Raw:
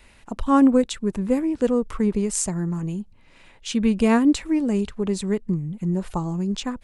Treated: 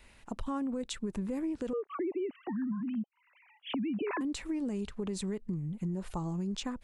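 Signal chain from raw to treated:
0:01.73–0:04.21: three sine waves on the formant tracks
brickwall limiter −18 dBFS, peak gain reduction 10.5 dB
downward compressor, threshold −25 dBFS, peak gain reduction 5 dB
level −6 dB

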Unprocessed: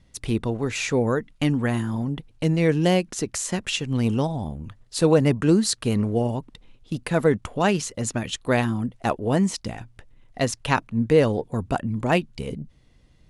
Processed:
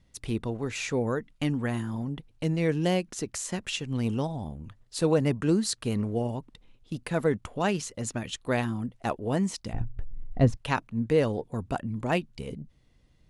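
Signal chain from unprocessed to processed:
0:09.73–0:10.57: spectral tilt −4.5 dB per octave
level −6 dB

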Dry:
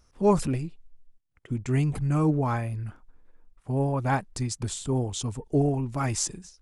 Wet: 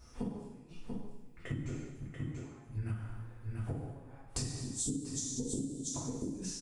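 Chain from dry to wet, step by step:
gate with flip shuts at −22 dBFS, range −40 dB
0:04.57–0:05.90: drawn EQ curve 110 Hz 0 dB, 280 Hz +12 dB, 1,600 Hz −24 dB, 5,900 Hz +8 dB
single-tap delay 687 ms −7 dB
coupled-rooms reverb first 0.9 s, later 2.3 s, DRR −9 dB
downward compressor 16 to 1, threshold −32 dBFS, peak gain reduction 17.5 dB
level −1 dB

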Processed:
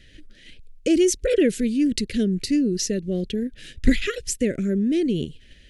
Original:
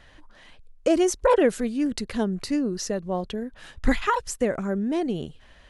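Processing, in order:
Chebyshev band-stop filter 380–2,300 Hz, order 2
in parallel at −1.5 dB: output level in coarse steps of 17 dB
on the sum: level +2.5 dB

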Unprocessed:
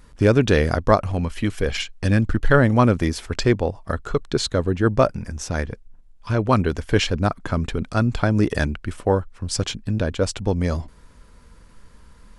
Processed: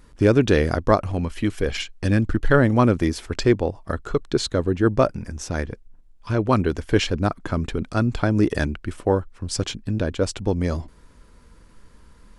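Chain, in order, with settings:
parametric band 330 Hz +4.5 dB 0.66 octaves
level −2 dB

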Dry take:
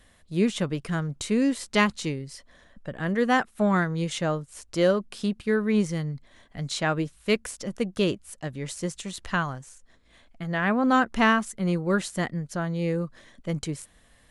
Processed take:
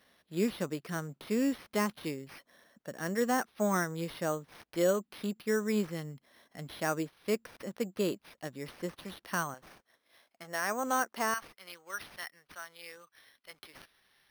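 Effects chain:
de-essing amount 95%
high-pass filter 220 Hz 12 dB per octave, from 0:09.54 480 Hz, from 0:11.34 1,500 Hz
bad sample-rate conversion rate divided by 6×, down none, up hold
level −5 dB

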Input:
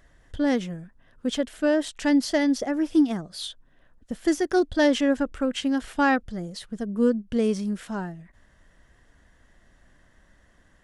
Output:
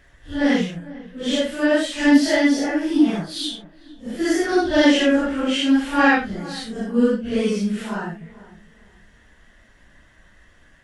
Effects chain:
random phases in long frames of 200 ms
parametric band 2,500 Hz +6.5 dB 1.4 octaves
on a send: feedback echo with a low-pass in the loop 450 ms, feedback 30%, low-pass 1,400 Hz, level −18 dB
on the sum: level +4 dB

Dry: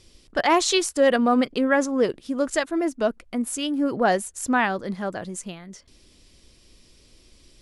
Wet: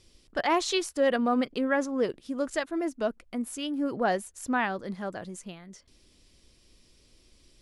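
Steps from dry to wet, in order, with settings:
dynamic equaliser 8,000 Hz, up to −5 dB, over −43 dBFS, Q 1.2
level −6 dB

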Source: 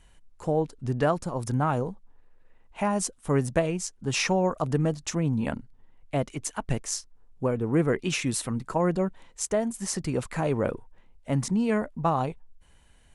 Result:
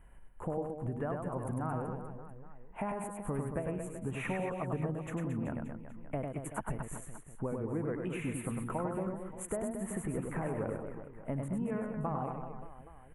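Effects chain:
Butterworth band-reject 5,000 Hz, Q 0.52
downward compressor 5 to 1, threshold −35 dBFS, peak gain reduction 15 dB
reverse bouncing-ball delay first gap 100 ms, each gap 1.25×, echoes 5

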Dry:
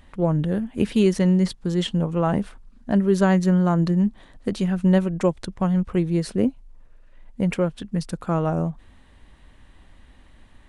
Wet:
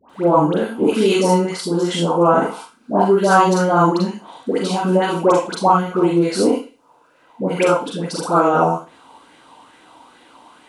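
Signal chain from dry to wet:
high-pass filter 370 Hz 12 dB per octave
parametric band 1,900 Hz −10 dB 0.71 octaves
notch filter 1,800 Hz, Q 7
all-pass dispersion highs, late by 98 ms, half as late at 1,100 Hz
0:01.17–0:03.18: dynamic equaliser 3,200 Hz, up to −7 dB, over −46 dBFS, Q 1.1
convolution reverb RT60 0.35 s, pre-delay 37 ms, DRR −2 dB
boost into a limiter +13 dB
auto-filter bell 2.3 Hz 880–1,900 Hz +12 dB
level −5.5 dB

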